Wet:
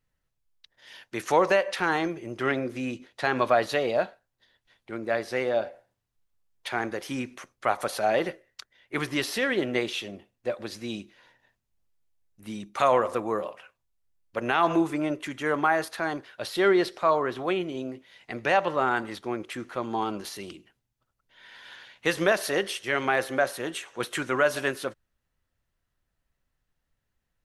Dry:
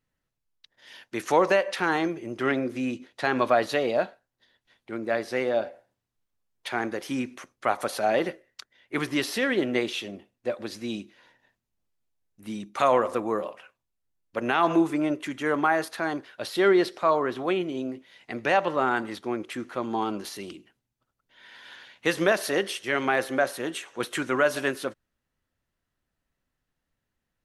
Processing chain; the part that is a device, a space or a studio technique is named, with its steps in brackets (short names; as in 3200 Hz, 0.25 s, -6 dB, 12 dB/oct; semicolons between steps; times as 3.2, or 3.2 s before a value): low shelf boost with a cut just above (low shelf 77 Hz +7 dB; bell 260 Hz -4 dB 0.94 oct)